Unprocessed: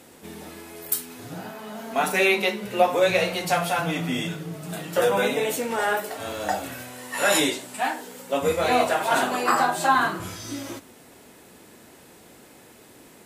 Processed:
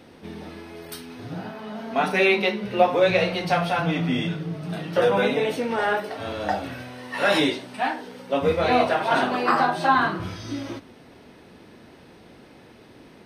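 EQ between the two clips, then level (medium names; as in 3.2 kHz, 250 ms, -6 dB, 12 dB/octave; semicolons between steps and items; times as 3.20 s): Savitzky-Golay filter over 15 samples; bass shelf 280 Hz +6 dB; 0.0 dB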